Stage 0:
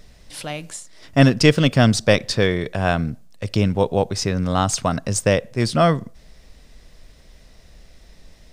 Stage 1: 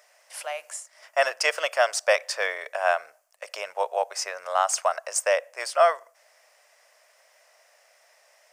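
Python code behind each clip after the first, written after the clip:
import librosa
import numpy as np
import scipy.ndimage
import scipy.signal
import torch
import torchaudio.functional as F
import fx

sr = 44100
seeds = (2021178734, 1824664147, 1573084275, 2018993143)

y = scipy.signal.sosfilt(scipy.signal.ellip(4, 1.0, 60, 590.0, 'highpass', fs=sr, output='sos'), x)
y = fx.peak_eq(y, sr, hz=3800.0, db=-13.0, octaves=0.58)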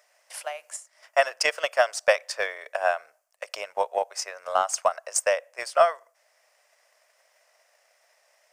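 y = fx.transient(x, sr, attack_db=8, sustain_db=-1)
y = F.gain(torch.from_numpy(y), -5.0).numpy()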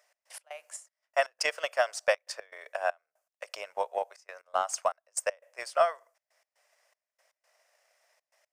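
y = fx.step_gate(x, sr, bpm=119, pattern='x.x.xxx..x.xxxxx', floor_db=-24.0, edge_ms=4.5)
y = F.gain(torch.from_numpy(y), -5.5).numpy()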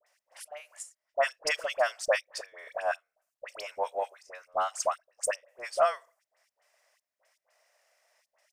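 y = fx.dispersion(x, sr, late='highs', ms=66.0, hz=1400.0)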